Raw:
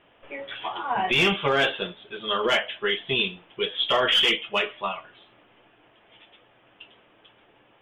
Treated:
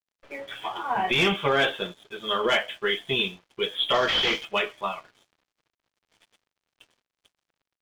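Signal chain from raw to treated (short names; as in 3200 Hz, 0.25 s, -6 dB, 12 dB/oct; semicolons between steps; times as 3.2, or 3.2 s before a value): 3.94–4.45 CVSD 32 kbps; notch 2800 Hz, Q 12; crossover distortion -51.5 dBFS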